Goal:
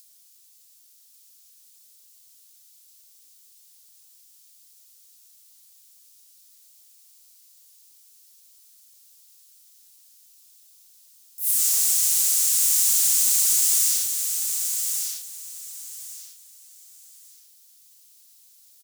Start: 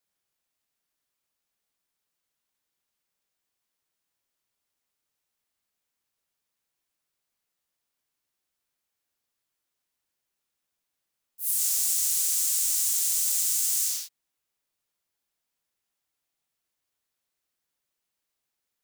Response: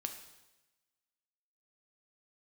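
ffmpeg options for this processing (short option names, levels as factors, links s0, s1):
-filter_complex "[0:a]acrossover=split=680|4100[s0][s1][s2];[s2]acompressor=mode=upward:threshold=0.00891:ratio=2.5[s3];[s0][s1][s3]amix=inputs=3:normalize=0,asoftclip=type=tanh:threshold=0.188,aecho=1:1:1144|2288|3432:0.531|0.127|0.0306,volume=1.88"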